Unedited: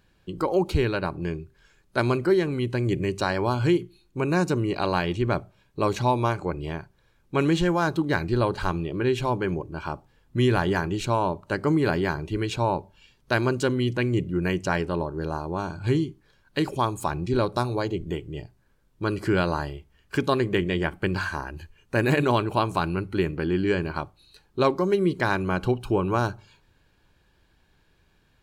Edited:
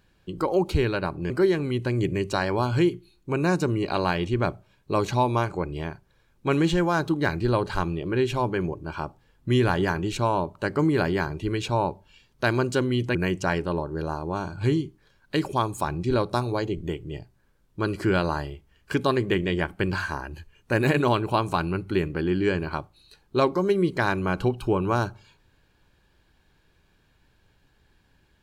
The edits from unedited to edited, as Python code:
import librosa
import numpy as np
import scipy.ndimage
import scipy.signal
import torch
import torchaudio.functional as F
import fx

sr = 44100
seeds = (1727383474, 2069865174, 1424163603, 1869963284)

y = fx.edit(x, sr, fx.cut(start_s=1.3, length_s=0.88),
    fx.cut(start_s=14.03, length_s=0.35), tone=tone)